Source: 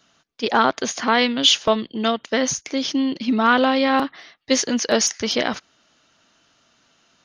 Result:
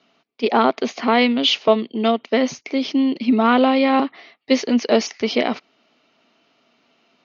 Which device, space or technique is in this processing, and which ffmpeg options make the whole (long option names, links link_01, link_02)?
kitchen radio: -af "highpass=180,equalizer=frequency=240:width_type=q:width=4:gain=6,equalizer=frequency=410:width_type=q:width=4:gain=6,equalizer=frequency=690:width_type=q:width=4:gain=4,equalizer=frequency=1600:width_type=q:width=4:gain=-8,equalizer=frequency=2300:width_type=q:width=4:gain=5,equalizer=frequency=3500:width_type=q:width=4:gain=-4,lowpass=frequency=4500:width=0.5412,lowpass=frequency=4500:width=1.3066"